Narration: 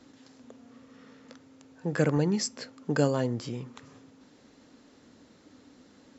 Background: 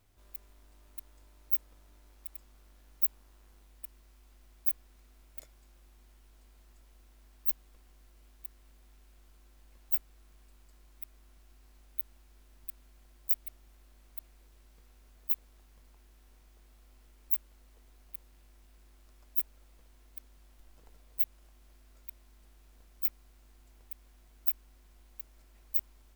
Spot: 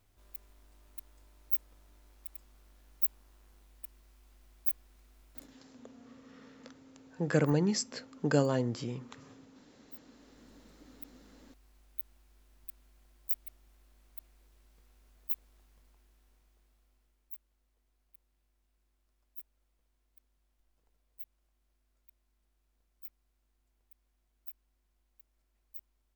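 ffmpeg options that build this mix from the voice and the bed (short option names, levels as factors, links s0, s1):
-filter_complex "[0:a]adelay=5350,volume=0.794[s0];[1:a]volume=5.96,afade=t=out:st=5.32:d=0.29:silence=0.105925,afade=t=in:st=10:d=0.6:silence=0.141254,afade=t=out:st=15.62:d=1.68:silence=0.223872[s1];[s0][s1]amix=inputs=2:normalize=0"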